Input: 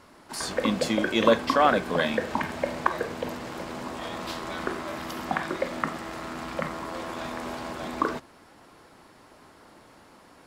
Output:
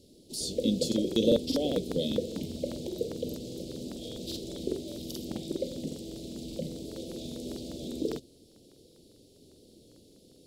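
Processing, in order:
elliptic band-stop filter 480–3,600 Hz, stop band 70 dB
regular buffer underruns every 0.20 s, samples 2,048, repeat, from 0:00.87

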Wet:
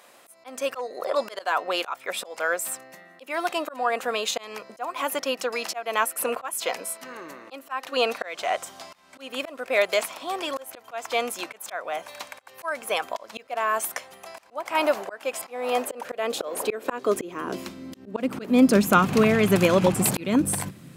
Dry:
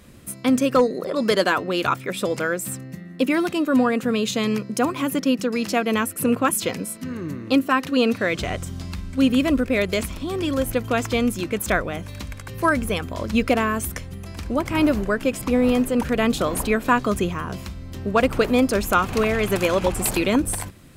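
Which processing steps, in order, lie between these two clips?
high-pass filter sweep 730 Hz → 150 Hz, 0:15.64–0:19.24
volume swells 301 ms

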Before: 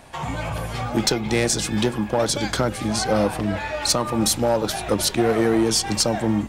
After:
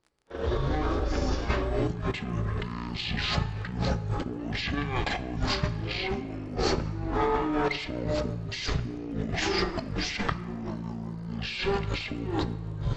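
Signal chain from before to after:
noise gate −28 dBFS, range −38 dB
compressor whose output falls as the input rises −30 dBFS, ratio −1
surface crackle 73 per second −49 dBFS
on a send at −14 dB: convolution reverb RT60 0.65 s, pre-delay 7 ms
on the sum: wrong playback speed 15 ips tape played at 7.5 ips
level −1 dB

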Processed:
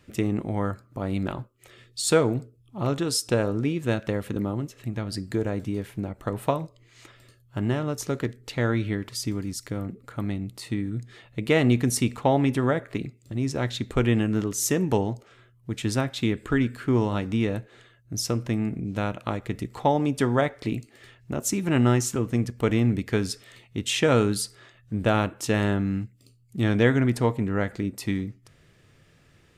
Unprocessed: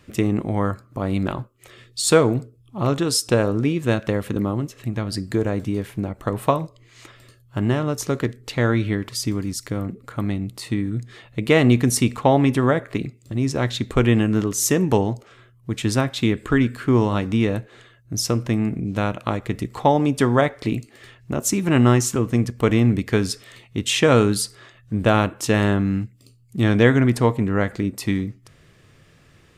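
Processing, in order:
notch filter 1,100 Hz, Q 15
level −5 dB

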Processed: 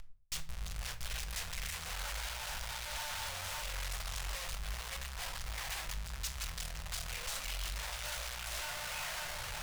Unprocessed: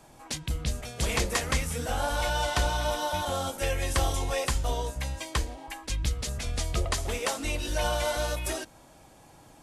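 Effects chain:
half-wave rectification
high-pass filter 44 Hz 6 dB per octave
delay with a band-pass on its return 563 ms, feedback 33%, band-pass 1,300 Hz, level −4.5 dB
reversed playback
downward compressor 20 to 1, threshold −40 dBFS, peak gain reduction 16.5 dB
reversed playback
low-shelf EQ 64 Hz +10 dB
brickwall limiter −34 dBFS, peak gain reduction 5.5 dB
comparator with hysteresis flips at −53.5 dBFS
guitar amp tone stack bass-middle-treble 10-0-10
rectangular room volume 510 cubic metres, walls furnished, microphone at 0.92 metres
highs frequency-modulated by the lows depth 0.71 ms
level +11 dB

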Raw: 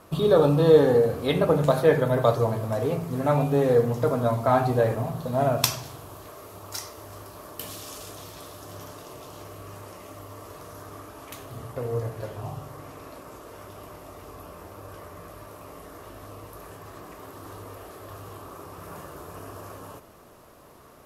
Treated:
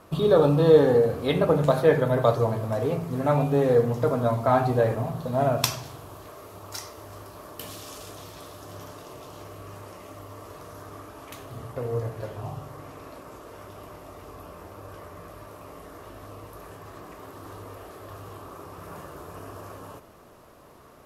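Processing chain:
high-shelf EQ 6,100 Hz −4.5 dB

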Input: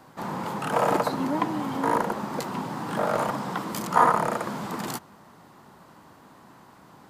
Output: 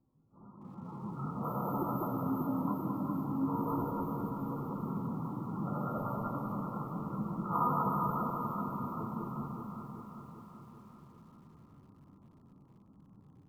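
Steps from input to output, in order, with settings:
low-pass that shuts in the quiet parts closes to 540 Hz, open at −20 dBFS
brick-wall band-stop 1,400–12,000 Hz
guitar amp tone stack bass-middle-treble 6-0-2
mains-hum notches 60/120/180/240/300 Hz
automatic gain control gain up to 13 dB
time stretch by phase vocoder 1.9×
on a send: delay that swaps between a low-pass and a high-pass 195 ms, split 930 Hz, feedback 79%, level −2 dB
on the sum: feedback echo at a low word length 241 ms, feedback 55%, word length 10 bits, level −14 dB
level +1.5 dB

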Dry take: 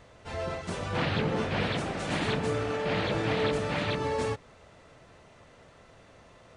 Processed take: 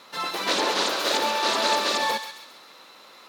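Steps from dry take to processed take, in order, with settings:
loudspeaker in its box 200–8,800 Hz, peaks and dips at 270 Hz +5 dB, 2,000 Hz +8 dB, 4,000 Hz −5 dB
feedback echo with a high-pass in the loop 270 ms, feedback 48%, high-pass 840 Hz, level −7 dB
wrong playback speed 7.5 ips tape played at 15 ips
level +5 dB

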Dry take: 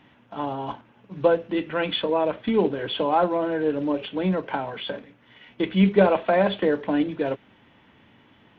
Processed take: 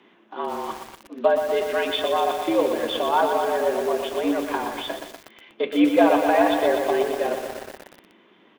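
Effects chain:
single-tap delay 207 ms −20.5 dB
frequency shifter +100 Hz
feedback echo at a low word length 121 ms, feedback 80%, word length 6 bits, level −6.5 dB

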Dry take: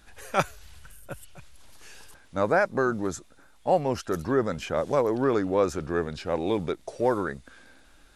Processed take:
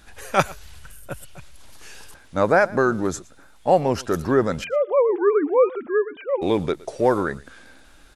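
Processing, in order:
0:04.64–0:06.42: three sine waves on the formant tracks
on a send: single-tap delay 116 ms −22 dB
on the sum: level +5.5 dB

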